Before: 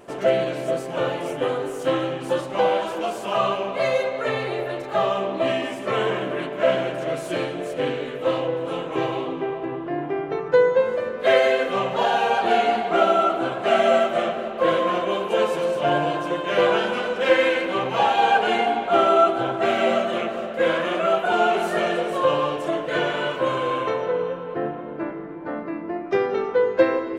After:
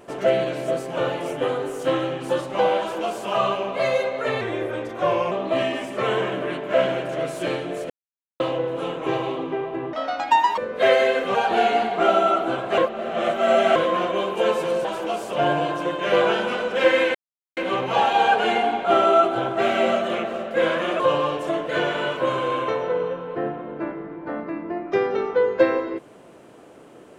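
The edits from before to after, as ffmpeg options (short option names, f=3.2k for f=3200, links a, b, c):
-filter_complex "[0:a]asplit=14[a][b][c][d][e][f][g][h][i][j][k][l][m][n];[a]atrim=end=4.414[o];[b]atrim=start=4.41:end=5.21,asetpts=PTS-STARTPTS,asetrate=38808,aresample=44100[p];[c]atrim=start=5.206:end=7.79,asetpts=PTS-STARTPTS,afade=t=out:st=2.58:d=0.004:c=hsin[q];[d]atrim=start=7.79:end=8.29,asetpts=PTS-STARTPTS,volume=0[r];[e]atrim=start=8.29:end=9.824,asetpts=PTS-STARTPTS,afade=t=in:d=0.004:c=hsin[s];[f]atrim=start=9.82:end=11.02,asetpts=PTS-STARTPTS,asetrate=81585,aresample=44100,atrim=end_sample=28605,asetpts=PTS-STARTPTS[t];[g]atrim=start=11.016:end=11.792[u];[h]atrim=start=12.278:end=13.712[v];[i]atrim=start=13.708:end=14.692,asetpts=PTS-STARTPTS,areverse[w];[j]atrim=start=14.688:end=15.782[x];[k]atrim=start=2.788:end=3.272[y];[l]atrim=start=15.778:end=17.6,asetpts=PTS-STARTPTS,afade=t=out:st=1.818:d=0.004:c=hsin,apad=pad_dur=0.42[z];[m]atrim=start=17.6:end=21.032,asetpts=PTS-STARTPTS,afade=t=in:d=0.004:c=hsin[aa];[n]atrim=start=22.188[ab];[o][p]acrossfade=d=0.004:c1=hsin:c2=hsin[ac];[q][r][s]concat=n=3:v=0:a=1[ad];[ac][ad]acrossfade=d=0.004:c1=hsin:c2=hsin[ae];[ae][t]acrossfade=d=0.004:c1=hsin:c2=hsin[af];[af][u]acrossfade=d=0.004:c1=hsin:c2=hsin[ag];[ag][v]acrossfade=d=0.004:c1=hsin:c2=hsin[ah];[ah][w]acrossfade=d=0.004:c1=hsin:c2=hsin[ai];[ai][x]acrossfade=d=0.004:c1=hsin:c2=hsin[aj];[aj][y]acrossfade=d=0.004:c1=hsin:c2=hsin[ak];[z][aa]concat=n=2:v=0:a=1[al];[ak][al]acrossfade=d=0.004:c1=hsin:c2=hsin[am];[am][ab]acrossfade=d=0.004:c1=hsin:c2=hsin"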